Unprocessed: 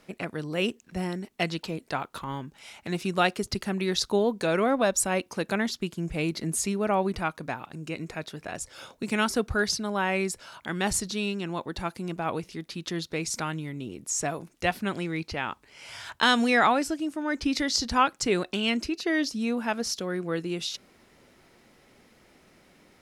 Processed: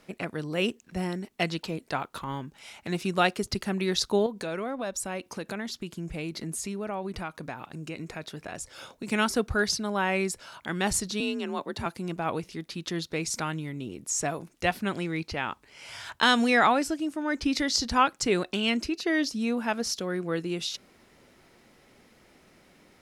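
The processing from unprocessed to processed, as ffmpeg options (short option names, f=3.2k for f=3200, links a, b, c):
-filter_complex "[0:a]asettb=1/sr,asplit=3[a][b][c];[a]atrim=end=4.264[d];[b]atrim=start=4.26:end=9.07,asetpts=PTS-STARTPTS,afade=t=in:d=0.004:c=qsin,afade=t=out:st=4.806:d=0.004:c=qsin,acompressor=threshold=-33dB:ratio=2.5:attack=3.2:release=140:knee=1:detection=peak[e];[c]atrim=start=9.066[f];[d][e]acrossfade=d=0.004:c1=hsin:c2=qsin[g];[g][f]acrossfade=d=0.004:c1=qsin:c2=hsin,asettb=1/sr,asplit=3[h][i][j];[h]atrim=end=11.204[k];[i]atrim=start=11.2:end=11.86,asetpts=PTS-STARTPTS,afade=t=in:d=0.004:c=qsin,afade=t=out:st=0.656:d=0.004:c=qsin,afreqshift=42[l];[j]atrim=start=11.856[m];[k][l]acrossfade=d=0.004:c1=hsin:c2=qsin[n];[n][m]acrossfade=d=0.004:c1=qsin:c2=hsin"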